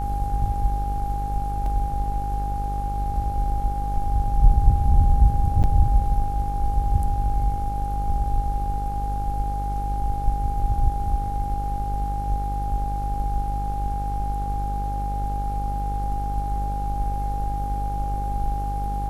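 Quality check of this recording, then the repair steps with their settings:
buzz 50 Hz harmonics 33 -27 dBFS
whine 810 Hz -28 dBFS
1.66 s: dropout 2.6 ms
5.63–5.64 s: dropout 8.5 ms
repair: band-stop 810 Hz, Q 30; de-hum 50 Hz, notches 33; interpolate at 1.66 s, 2.6 ms; interpolate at 5.63 s, 8.5 ms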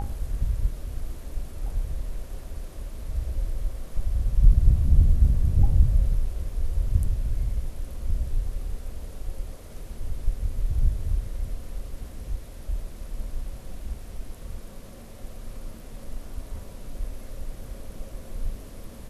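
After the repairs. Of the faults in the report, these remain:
nothing left

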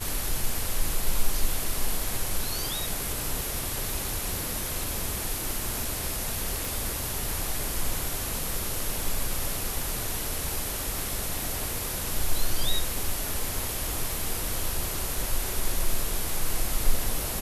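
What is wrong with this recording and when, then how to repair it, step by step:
6.65 s: pop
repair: de-click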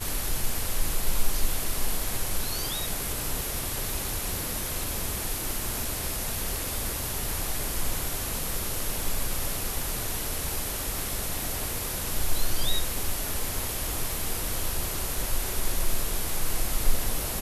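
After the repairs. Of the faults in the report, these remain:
nothing left

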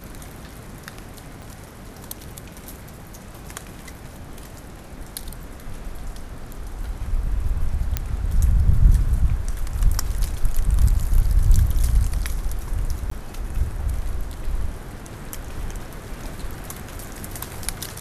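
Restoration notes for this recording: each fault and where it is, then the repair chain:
1.42 s: pop
7.97 s: pop -7 dBFS
13.10–13.11 s: dropout 14 ms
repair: de-click; interpolate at 13.10 s, 14 ms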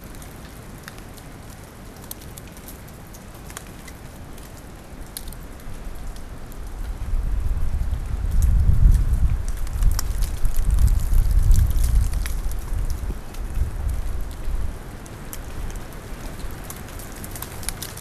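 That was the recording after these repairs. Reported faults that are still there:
1.42 s: pop

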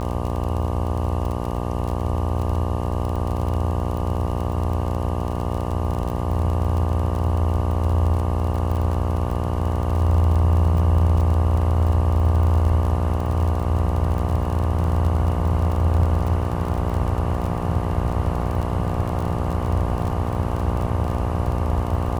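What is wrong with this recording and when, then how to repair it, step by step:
buzz 60 Hz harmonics 20 -26 dBFS
crackle 29 per s -26 dBFS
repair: de-click; de-hum 60 Hz, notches 20

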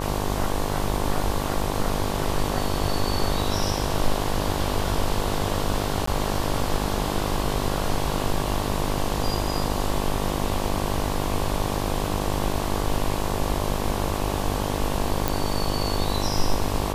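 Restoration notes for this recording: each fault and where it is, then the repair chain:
buzz 50 Hz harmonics 23 -28 dBFS
6.06–6.07 s: dropout 14 ms
15.28 s: pop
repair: de-click; de-hum 50 Hz, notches 23; interpolate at 6.06 s, 14 ms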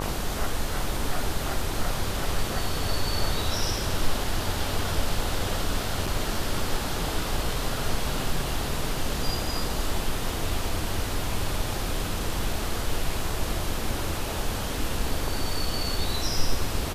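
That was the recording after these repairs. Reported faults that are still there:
nothing left

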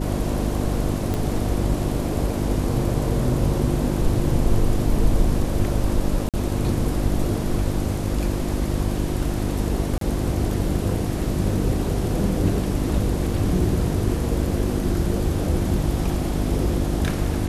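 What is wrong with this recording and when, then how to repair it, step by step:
hum 50 Hz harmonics 7 -26 dBFS
1.14 s: pop
6.29–6.34 s: dropout 47 ms
9.98–10.01 s: dropout 33 ms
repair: de-click; de-hum 50 Hz, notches 7; interpolate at 6.29 s, 47 ms; interpolate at 9.98 s, 33 ms

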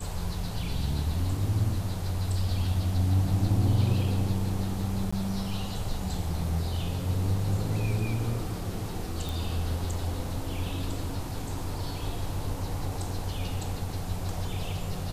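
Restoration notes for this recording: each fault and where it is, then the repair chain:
5.11–5.12 s: dropout 15 ms
9.29 s: pop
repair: de-click; interpolate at 5.11 s, 15 ms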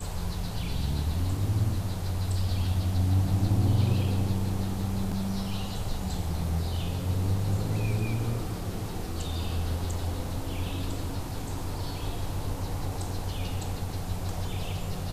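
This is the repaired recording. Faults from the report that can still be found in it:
nothing left

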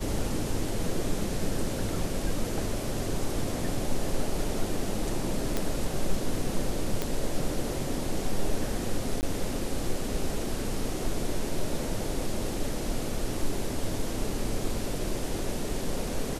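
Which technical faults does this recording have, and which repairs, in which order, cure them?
5.57 s: pop -13 dBFS
7.02 s: pop -13 dBFS
9.21–9.23 s: dropout 19 ms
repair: de-click; interpolate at 9.21 s, 19 ms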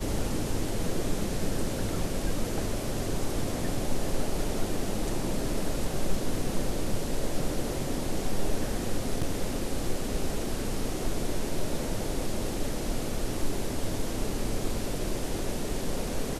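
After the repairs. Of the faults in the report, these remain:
nothing left

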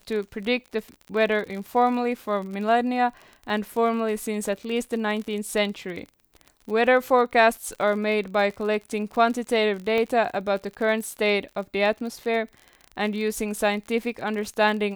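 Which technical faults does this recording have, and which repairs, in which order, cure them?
crackle 41 per s -32 dBFS
9.98 s: pop -15 dBFS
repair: de-click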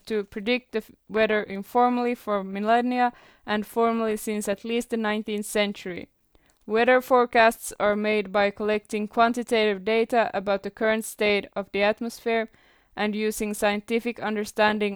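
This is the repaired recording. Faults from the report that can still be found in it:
nothing left

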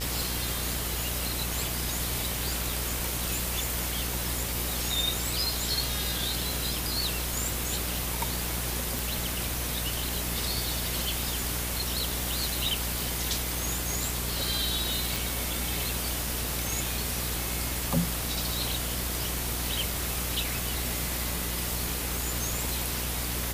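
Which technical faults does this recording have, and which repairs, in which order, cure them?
buzz 60 Hz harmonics 30 -35 dBFS
8.99 s: pop
15.16 s: pop
18.74 s: pop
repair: de-click; de-hum 60 Hz, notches 30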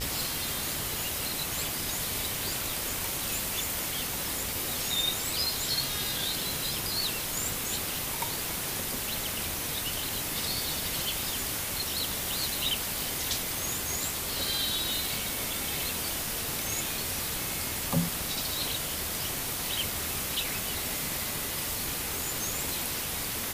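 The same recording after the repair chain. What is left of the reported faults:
nothing left

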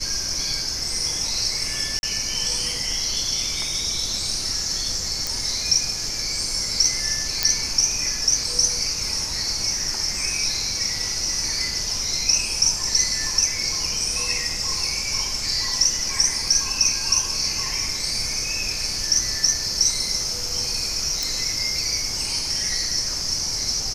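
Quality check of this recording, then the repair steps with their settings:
1.99–2.03 s: dropout 41 ms
5.27 s: pop
7.43 s: pop -2 dBFS
21.23 s: pop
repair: de-click; interpolate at 1.99 s, 41 ms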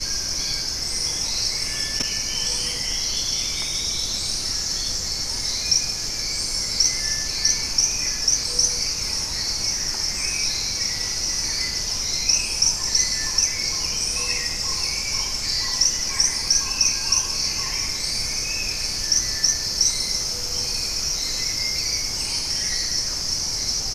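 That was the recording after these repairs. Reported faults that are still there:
nothing left

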